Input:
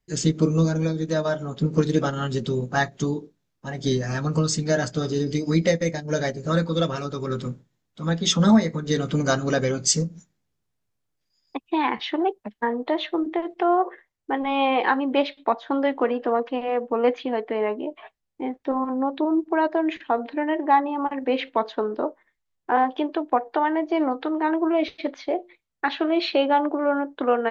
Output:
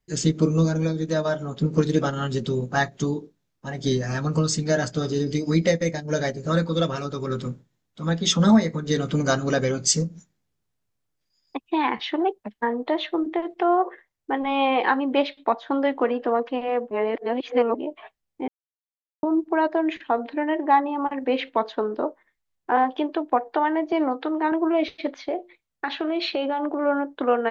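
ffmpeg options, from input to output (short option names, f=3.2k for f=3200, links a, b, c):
-filter_complex "[0:a]asettb=1/sr,asplit=3[a][b][c];[a]atrim=end=23.924[d];[b]atrim=start=23.92:end=24.52,asetpts=PTS-STARTPTS,afade=t=in:d=0.004:c=qsin,afade=t=out:st=0.596:d=0.004:c=qsin,highpass=160[e];[c]atrim=start=24.516[f];[d][e]acrossfade=d=0.004:c1=hsin:c2=qsin[g];[g][f]acrossfade=d=0.004:c1=qsin:c2=hsin,asettb=1/sr,asplit=3[h][i][j];[h]atrim=end=25.164[k];[i]atrim=start=25.16:end=26.77,asetpts=PTS-STARTPTS,afade=t=in:d=0.004:c=qsin,afade=t=out:st=1.606:d=0.004:c=qsin,acompressor=threshold=-21dB:ratio=6:attack=3.2:release=140:knee=1:detection=peak[l];[j]atrim=start=26.766[m];[k][l]acrossfade=d=0.004:c1=hsin:c2=qsin[n];[n][m]acrossfade=d=0.004:c1=qsin:c2=hsin,asplit=5[o][p][q][r][s];[o]atrim=end=16.912[t];[p]atrim=start=16.908:end=17.752,asetpts=PTS-STARTPTS,areverse[u];[q]atrim=start=17.748:end=18.48,asetpts=PTS-STARTPTS,afade=t=out:st=0.728:d=0.004:c=hsin[v];[r]atrim=start=18.48:end=19.23,asetpts=PTS-STARTPTS,volume=0[w];[s]atrim=start=19.23,asetpts=PTS-STARTPTS,afade=t=in:d=0.004:c=hsin[x];[t][u]acrossfade=d=0.004:c1=hsin:c2=hsin[y];[v][w][x]concat=n=3:v=0:a=1[z];[y][z]acrossfade=d=0.004:c1=hsin:c2=hsin"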